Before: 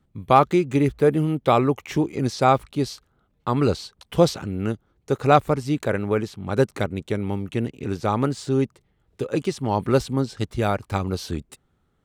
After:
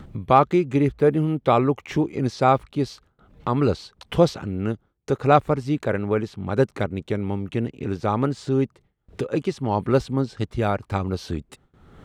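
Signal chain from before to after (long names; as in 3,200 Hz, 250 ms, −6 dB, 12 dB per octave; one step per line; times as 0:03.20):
low-pass filter 3,300 Hz 6 dB per octave
upward compression, threshold −24 dBFS
noise gate with hold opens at −46 dBFS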